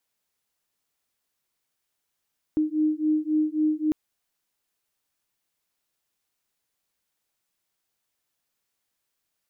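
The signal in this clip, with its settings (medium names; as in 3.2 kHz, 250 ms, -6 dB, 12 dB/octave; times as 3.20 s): beating tones 306 Hz, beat 3.7 Hz, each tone -24 dBFS 1.35 s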